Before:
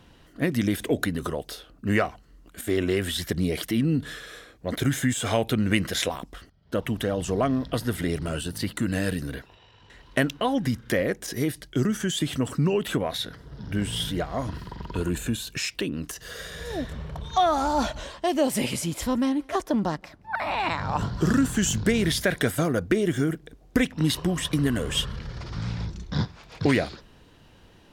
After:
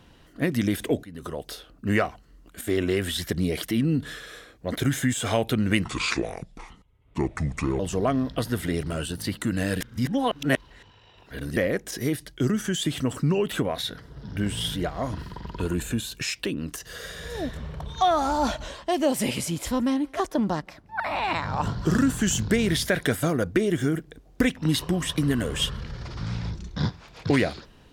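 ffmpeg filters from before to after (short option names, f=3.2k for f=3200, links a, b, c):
-filter_complex "[0:a]asplit=6[a][b][c][d][e][f];[a]atrim=end=1.03,asetpts=PTS-STARTPTS,afade=t=out:st=1.026:d=0.004:c=hsin:silence=0.0630957[g];[b]atrim=start=1.03:end=5.844,asetpts=PTS-STARTPTS,afade=t=in:d=0.47:silence=0.0630957[h];[c]atrim=start=5.84:end=7.15,asetpts=PTS-STARTPTS,asetrate=29547,aresample=44100,atrim=end_sample=86225,asetpts=PTS-STARTPTS[i];[d]atrim=start=7.146:end=9.162[j];[e]atrim=start=9.158:end=10.922,asetpts=PTS-STARTPTS,areverse[k];[f]atrim=start=10.918[l];[g][h]concat=n=2:v=0:a=1[m];[m][i]acrossfade=d=0.004:c1=hsin:c2=hsin[n];[n][j]acrossfade=d=0.004:c1=hsin:c2=hsin[o];[o][k]acrossfade=d=0.004:c1=hsin:c2=hsin[p];[p][l]acrossfade=d=0.004:c1=hsin:c2=hsin"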